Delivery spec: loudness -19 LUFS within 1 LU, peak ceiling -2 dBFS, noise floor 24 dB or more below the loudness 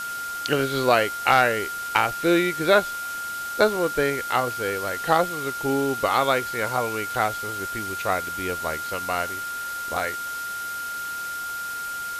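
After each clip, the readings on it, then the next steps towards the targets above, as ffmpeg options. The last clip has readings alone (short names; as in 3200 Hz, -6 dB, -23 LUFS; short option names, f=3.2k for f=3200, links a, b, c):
steady tone 1400 Hz; tone level -29 dBFS; noise floor -31 dBFS; noise floor target -48 dBFS; loudness -24.0 LUFS; peak -2.5 dBFS; loudness target -19.0 LUFS
-> -af "bandreject=f=1.4k:w=30"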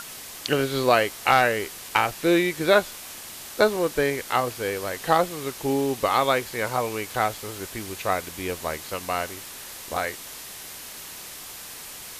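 steady tone none; noise floor -40 dBFS; noise floor target -49 dBFS
-> -af "afftdn=nr=9:nf=-40"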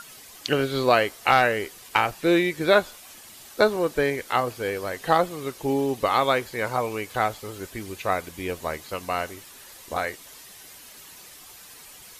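noise floor -46 dBFS; noise floor target -49 dBFS
-> -af "afftdn=nr=6:nf=-46"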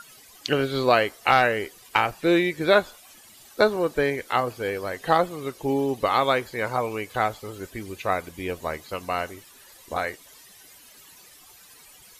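noise floor -51 dBFS; loudness -24.5 LUFS; peak -3.0 dBFS; loudness target -19.0 LUFS
-> -af "volume=5.5dB,alimiter=limit=-2dB:level=0:latency=1"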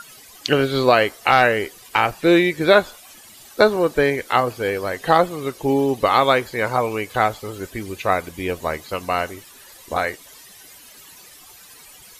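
loudness -19.5 LUFS; peak -2.0 dBFS; noise floor -45 dBFS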